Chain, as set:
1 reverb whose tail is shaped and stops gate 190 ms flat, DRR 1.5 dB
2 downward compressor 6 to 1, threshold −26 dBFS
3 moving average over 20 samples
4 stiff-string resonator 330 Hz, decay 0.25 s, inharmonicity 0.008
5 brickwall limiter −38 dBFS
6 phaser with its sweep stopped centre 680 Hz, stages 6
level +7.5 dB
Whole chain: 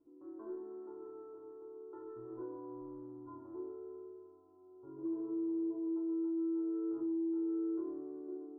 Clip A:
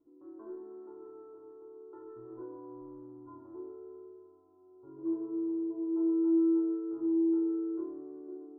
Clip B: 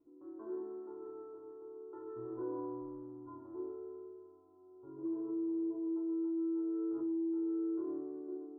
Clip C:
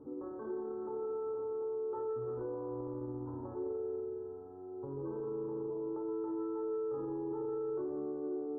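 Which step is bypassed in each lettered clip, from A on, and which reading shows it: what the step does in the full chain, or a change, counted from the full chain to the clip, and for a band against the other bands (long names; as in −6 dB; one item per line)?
5, average gain reduction 1.5 dB
2, average gain reduction 2.5 dB
4, 250 Hz band −13.5 dB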